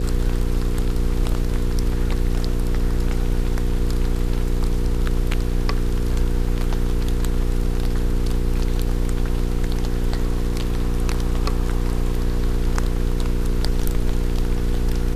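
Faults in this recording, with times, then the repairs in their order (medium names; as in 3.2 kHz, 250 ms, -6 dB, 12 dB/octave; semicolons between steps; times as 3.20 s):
hum 60 Hz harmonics 8 -25 dBFS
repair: de-hum 60 Hz, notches 8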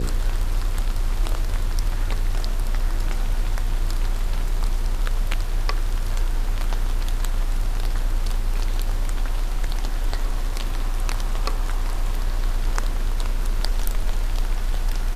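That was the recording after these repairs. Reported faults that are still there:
nothing left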